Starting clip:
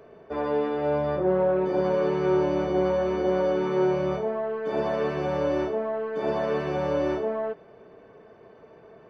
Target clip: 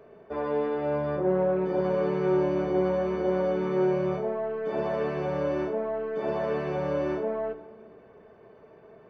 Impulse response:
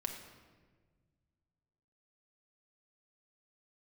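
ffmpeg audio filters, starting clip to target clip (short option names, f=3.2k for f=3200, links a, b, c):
-filter_complex "[0:a]asplit=2[a][b];[1:a]atrim=start_sample=2205,lowpass=3.8k[c];[b][c]afir=irnorm=-1:irlink=0,volume=-4dB[d];[a][d]amix=inputs=2:normalize=0,volume=-6dB"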